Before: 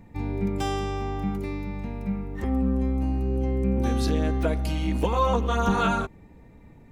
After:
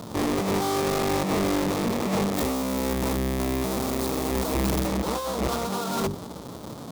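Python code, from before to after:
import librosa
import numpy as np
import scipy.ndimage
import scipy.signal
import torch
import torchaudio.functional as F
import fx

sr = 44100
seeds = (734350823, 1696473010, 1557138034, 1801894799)

y = fx.halfwave_hold(x, sr)
y = scipy.signal.sosfilt(scipy.signal.butter(2, 160.0, 'highpass', fs=sr, output='sos'), y)
y = fx.band_shelf(y, sr, hz=2100.0, db=-10.0, octaves=1.1)
y = fx.hum_notches(y, sr, base_hz=50, count=8)
y = fx.over_compress(y, sr, threshold_db=-31.0, ratio=-1.0)
y = np.clip(y, -10.0 ** (-29.0 / 20.0), 10.0 ** (-29.0 / 20.0))
y = fx.high_shelf(y, sr, hz=9100.0, db=10.0, at=(2.34, 4.87))
y = F.gain(torch.from_numpy(y), 8.0).numpy()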